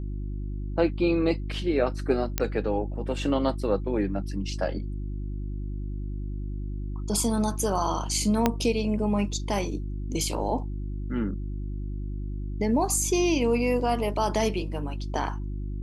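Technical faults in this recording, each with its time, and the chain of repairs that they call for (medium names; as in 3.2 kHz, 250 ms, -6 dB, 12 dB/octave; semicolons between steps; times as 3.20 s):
hum 50 Hz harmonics 7 -32 dBFS
2.38 s: pop -8 dBFS
8.46 s: pop -7 dBFS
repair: de-click; de-hum 50 Hz, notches 7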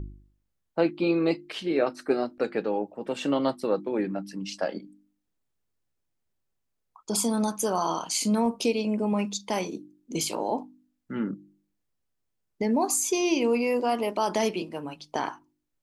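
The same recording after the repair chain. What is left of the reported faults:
8.46 s: pop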